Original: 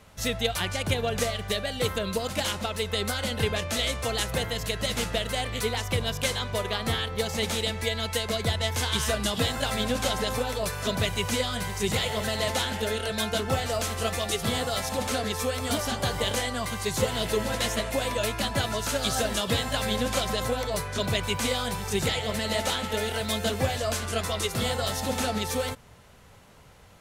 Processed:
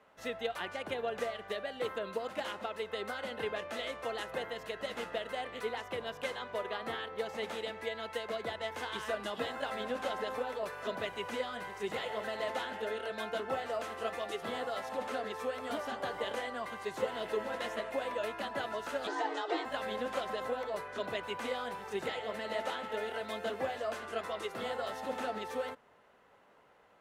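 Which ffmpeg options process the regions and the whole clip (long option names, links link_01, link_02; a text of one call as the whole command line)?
ffmpeg -i in.wav -filter_complex "[0:a]asettb=1/sr,asplit=3[link_01][link_02][link_03];[link_01]atrim=end=19.074[link_04];[link_02]atrim=start=19.07:end=19.65,asetpts=PTS-STARTPTS,afade=type=in:duration=0.004:curve=qsin,afade=type=out:start_time=0.576:duration=0.004:curve=qsin,lowpass=frequency=7100:width=0.5412,lowpass=frequency=7100:width=1.3066,afreqshift=230[link_05];[link_03]atrim=start=19.646[link_06];[link_04][link_05]acrossfade=duration=0.004:curve1=hsin:curve2=qsin[link_07];[link_07][link_06]acrossfade=duration=0.004:curve1=qsin:curve2=hsin,acrossover=split=260 2600:gain=0.0708 1 0.141[link_08][link_09][link_10];[link_08][link_09][link_10]amix=inputs=3:normalize=0,bandreject=frequency=2300:width=17,volume=-6dB" out.wav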